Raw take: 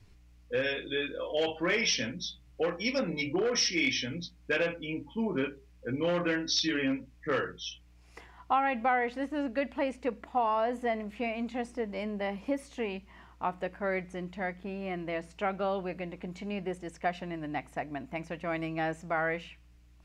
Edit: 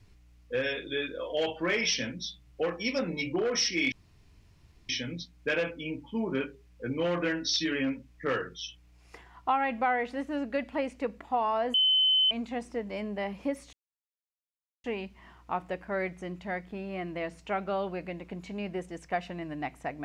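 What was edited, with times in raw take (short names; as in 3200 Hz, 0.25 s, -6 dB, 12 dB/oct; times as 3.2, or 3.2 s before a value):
3.92 insert room tone 0.97 s
10.77–11.34 bleep 3050 Hz -20.5 dBFS
12.76 insert silence 1.11 s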